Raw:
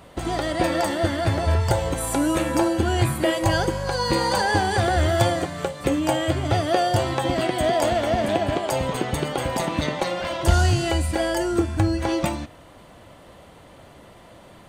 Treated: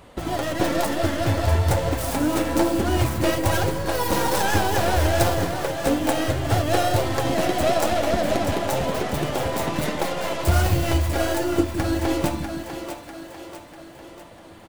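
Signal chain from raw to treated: tracing distortion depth 0.46 ms; flange 1 Hz, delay 1.7 ms, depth 9.5 ms, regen -31%; two-band feedback delay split 330 Hz, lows 163 ms, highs 646 ms, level -8 dB; harmony voices -3 st -10 dB; loudness maximiser +9 dB; trim -6.5 dB

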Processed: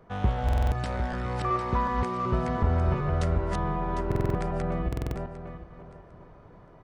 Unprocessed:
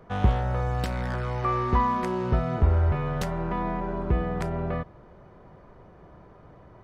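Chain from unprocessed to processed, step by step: backward echo that repeats 376 ms, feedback 43%, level -1.5 dB; resampled via 22.05 kHz; buffer glitch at 0.44/4.07/4.88 s, samples 2048, times 5; trim -4 dB

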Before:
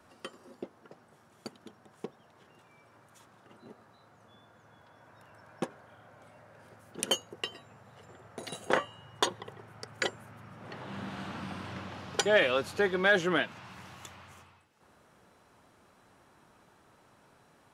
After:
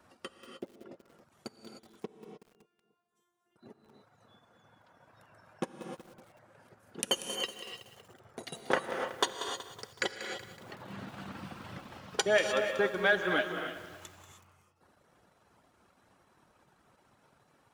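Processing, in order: reverb removal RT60 1.3 s; transient shaper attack +1 dB, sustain -11 dB; 2.06–3.56 s: feedback comb 350 Hz, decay 0.52 s, mix 100%; on a send: filtered feedback delay 287 ms, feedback 40%, low-pass 910 Hz, level -19 dB; on the sum: gated-style reverb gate 330 ms rising, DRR 5 dB; bit-crushed delay 187 ms, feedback 55%, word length 8-bit, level -11.5 dB; trim -2 dB

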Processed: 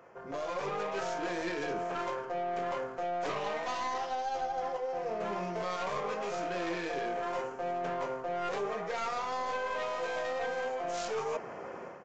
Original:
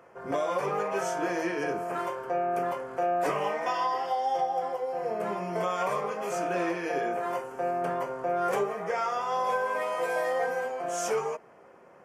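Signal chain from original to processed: tracing distortion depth 0.28 ms; level rider gain up to 14 dB; dynamic bell 3.5 kHz, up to +3 dB, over -31 dBFS, Q 0.77; in parallel at -5.5 dB: saturation -20.5 dBFS, distortion -7 dB; on the sum: resampled via 16 kHz; reverse; compression 5:1, threshold -29 dBFS, peak gain reduction 17.5 dB; reverse; trim -5.5 dB

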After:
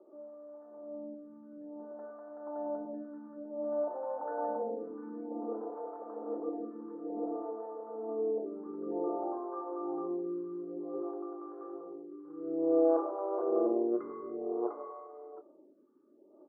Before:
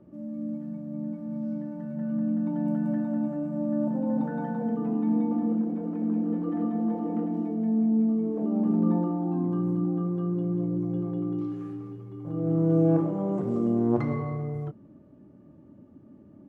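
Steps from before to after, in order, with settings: elliptic band-pass 370–1300 Hz, stop band 60 dB; echo from a far wall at 120 m, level -7 dB; lamp-driven phase shifter 0.55 Hz; trim +2.5 dB

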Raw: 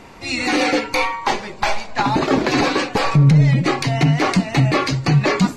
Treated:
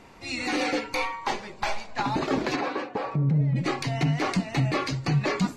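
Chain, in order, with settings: 2.55–3.55 s: band-pass filter 1 kHz -> 200 Hz, Q 0.56; trim -9 dB

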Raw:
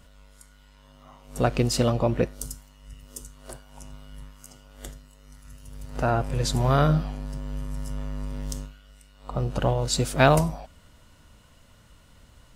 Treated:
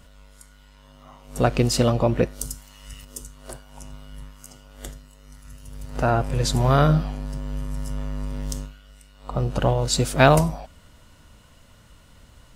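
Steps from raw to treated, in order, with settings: 1.63–3.05 s: tape noise reduction on one side only encoder only; trim +3 dB

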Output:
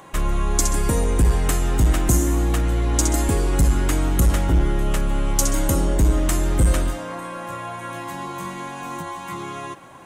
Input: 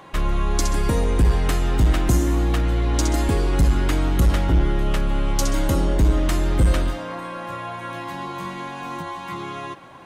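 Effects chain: resonant high shelf 5.8 kHz +7 dB, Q 1.5

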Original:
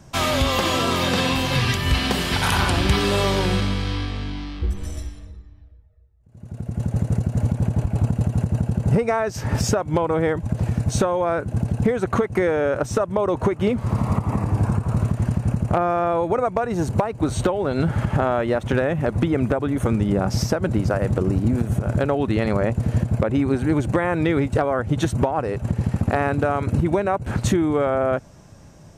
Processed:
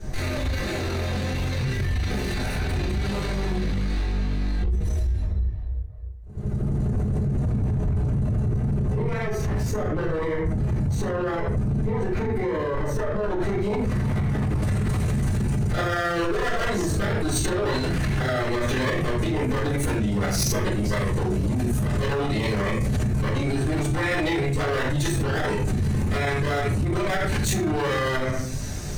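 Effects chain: comb filter that takes the minimum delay 0.48 ms; reverb removal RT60 0.59 s; simulated room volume 76 m³, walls mixed, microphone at 3.7 m; peak limiter -18 dBFS, peak gain reduction 27.5 dB; treble shelf 2 kHz -6 dB, from 13.40 s +2.5 dB, from 14.62 s +10.5 dB

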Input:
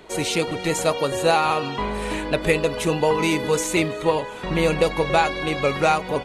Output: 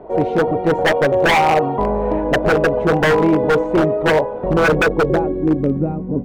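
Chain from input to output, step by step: de-hum 182.1 Hz, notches 15; low-pass sweep 700 Hz -> 250 Hz, 4.22–5.83 s; wavefolder -14.5 dBFS; trim +6.5 dB

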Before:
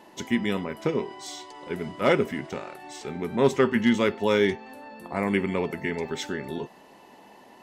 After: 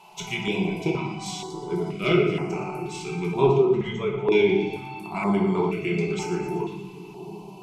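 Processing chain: 3.57–4.32 s: resonances exaggerated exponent 2; peaking EQ 2.4 kHz +15 dB 0.43 oct; static phaser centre 360 Hz, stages 8; two-band feedback delay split 430 Hz, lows 676 ms, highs 118 ms, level -12 dB; low-pass that closes with the level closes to 1.1 kHz, closed at -15.5 dBFS; reverberation RT60 0.75 s, pre-delay 5 ms, DRR -1 dB; step-sequenced notch 2.1 Hz 310–3600 Hz; trim +2 dB

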